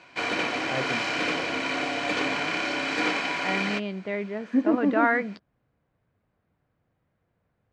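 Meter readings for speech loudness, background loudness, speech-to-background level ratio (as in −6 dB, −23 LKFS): −27.5 LKFS, −27.0 LKFS, −0.5 dB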